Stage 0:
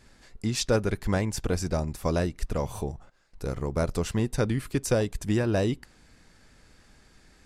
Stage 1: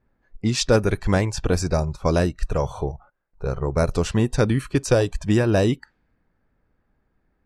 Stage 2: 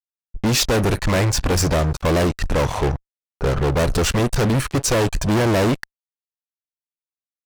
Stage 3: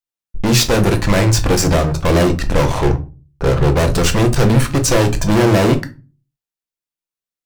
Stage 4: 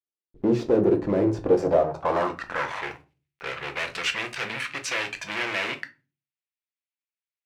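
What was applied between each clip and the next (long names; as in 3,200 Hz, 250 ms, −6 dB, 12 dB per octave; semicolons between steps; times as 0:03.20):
noise reduction from a noise print of the clip's start 17 dB; low-pass that shuts in the quiet parts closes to 1,300 Hz, open at −21.5 dBFS; level +6.5 dB
fuzz pedal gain 31 dB, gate −40 dBFS; level −2.5 dB
convolution reverb RT60 0.35 s, pre-delay 6 ms, DRR 6 dB; level +3 dB
one scale factor per block 7 bits; band-pass filter sweep 370 Hz → 2,300 Hz, 0:01.38–0:02.93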